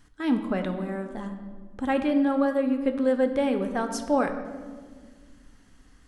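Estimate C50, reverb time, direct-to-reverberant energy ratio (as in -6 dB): 8.5 dB, 1.7 s, 6.0 dB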